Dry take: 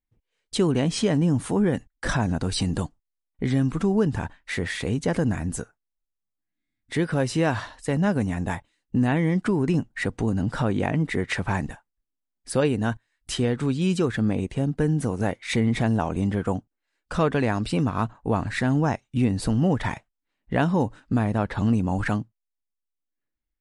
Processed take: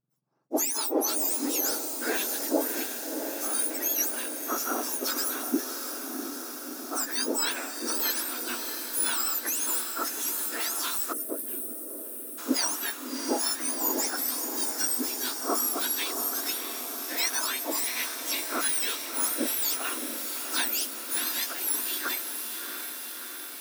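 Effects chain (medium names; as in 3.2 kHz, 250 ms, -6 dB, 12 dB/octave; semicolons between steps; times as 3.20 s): spectrum inverted on a logarithmic axis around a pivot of 1.6 kHz; band-stop 3 kHz, Q 14; echo that smears into a reverb 673 ms, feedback 70%, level -6.5 dB; time-frequency box 11.13–12.38 s, 670–8000 Hz -20 dB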